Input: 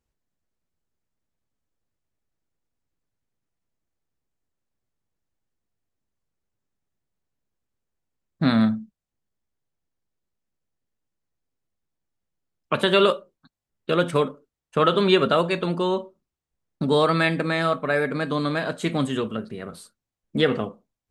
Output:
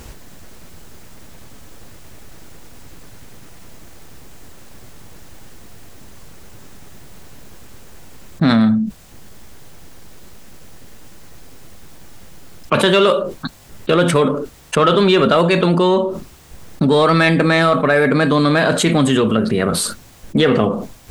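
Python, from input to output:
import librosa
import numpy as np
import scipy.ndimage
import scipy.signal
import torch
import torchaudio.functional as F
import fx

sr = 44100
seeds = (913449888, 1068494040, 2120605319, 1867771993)

p1 = 10.0 ** (-17.0 / 20.0) * np.tanh(x / 10.0 ** (-17.0 / 20.0))
p2 = x + F.gain(torch.from_numpy(p1), -3.5).numpy()
y = fx.env_flatten(p2, sr, amount_pct=70)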